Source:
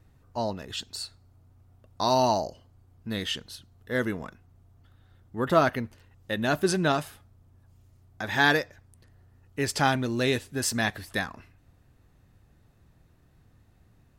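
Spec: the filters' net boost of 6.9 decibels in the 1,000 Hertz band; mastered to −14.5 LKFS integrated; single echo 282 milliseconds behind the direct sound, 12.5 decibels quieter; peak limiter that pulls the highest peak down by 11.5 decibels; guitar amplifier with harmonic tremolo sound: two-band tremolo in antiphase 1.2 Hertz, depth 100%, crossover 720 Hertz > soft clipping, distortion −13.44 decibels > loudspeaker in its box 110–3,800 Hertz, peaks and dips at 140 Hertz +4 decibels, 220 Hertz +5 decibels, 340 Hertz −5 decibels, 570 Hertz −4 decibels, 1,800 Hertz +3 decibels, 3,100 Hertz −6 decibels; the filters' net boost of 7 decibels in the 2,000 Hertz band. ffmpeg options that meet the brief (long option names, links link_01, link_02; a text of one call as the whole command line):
ffmpeg -i in.wav -filter_complex "[0:a]equalizer=frequency=1000:width_type=o:gain=8.5,equalizer=frequency=2000:width_type=o:gain=3.5,alimiter=limit=-13.5dB:level=0:latency=1,aecho=1:1:282:0.237,acrossover=split=720[link_01][link_02];[link_01]aeval=exprs='val(0)*(1-1/2+1/2*cos(2*PI*1.2*n/s))':channel_layout=same[link_03];[link_02]aeval=exprs='val(0)*(1-1/2-1/2*cos(2*PI*1.2*n/s))':channel_layout=same[link_04];[link_03][link_04]amix=inputs=2:normalize=0,asoftclip=threshold=-24.5dB,highpass=110,equalizer=frequency=140:width_type=q:width=4:gain=4,equalizer=frequency=220:width_type=q:width=4:gain=5,equalizer=frequency=340:width_type=q:width=4:gain=-5,equalizer=frequency=570:width_type=q:width=4:gain=-4,equalizer=frequency=1800:width_type=q:width=4:gain=3,equalizer=frequency=3100:width_type=q:width=4:gain=-6,lowpass=frequency=3800:width=0.5412,lowpass=frequency=3800:width=1.3066,volume=20dB" out.wav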